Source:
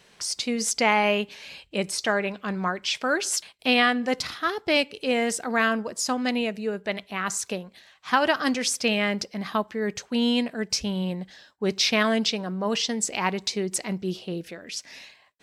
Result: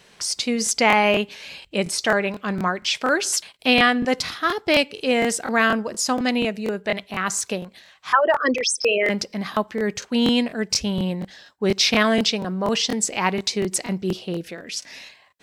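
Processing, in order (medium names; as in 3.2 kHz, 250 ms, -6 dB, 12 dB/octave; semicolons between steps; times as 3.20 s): 8.12–9.10 s: resonances exaggerated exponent 3; crackling interface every 0.24 s, samples 1024, repeat, from 0.64 s; trim +4 dB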